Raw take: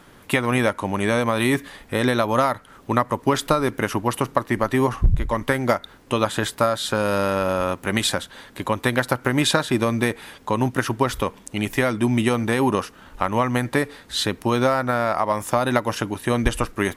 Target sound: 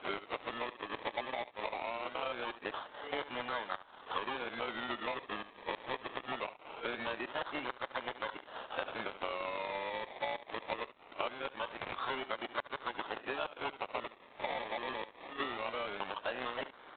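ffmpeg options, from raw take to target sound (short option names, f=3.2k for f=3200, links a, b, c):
-filter_complex "[0:a]areverse,aresample=8000,acrusher=bits=2:mode=log:mix=0:aa=0.000001,aresample=44100,lowpass=f=1.7k:p=1,asplit=2[a][b];[b]aecho=0:1:71:0.141[c];[a][c]amix=inputs=2:normalize=0,acrusher=samples=24:mix=1:aa=0.000001:lfo=1:lforange=14.4:lforate=0.22,highpass=640,acompressor=threshold=-35dB:ratio=10,volume=3dB" -ar 8000 -c:a adpcm_g726 -b:a 24k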